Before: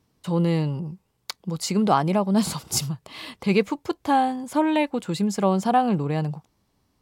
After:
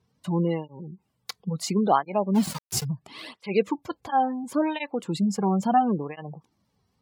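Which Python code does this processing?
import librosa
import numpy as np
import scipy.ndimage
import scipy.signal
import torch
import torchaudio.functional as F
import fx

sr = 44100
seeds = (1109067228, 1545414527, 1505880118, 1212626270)

y = fx.spec_gate(x, sr, threshold_db=-30, keep='strong')
y = fx.sample_gate(y, sr, floor_db=-28.0, at=(2.34, 2.83), fade=0.02)
y = fx.flanger_cancel(y, sr, hz=0.73, depth_ms=3.6)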